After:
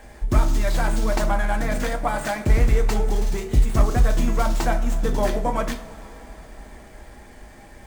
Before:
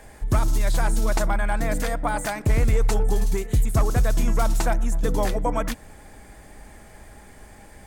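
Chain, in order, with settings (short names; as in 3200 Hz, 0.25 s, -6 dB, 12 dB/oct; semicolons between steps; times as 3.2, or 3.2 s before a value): two-slope reverb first 0.32 s, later 4.5 s, from -21 dB, DRR 3 dB; running maximum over 3 samples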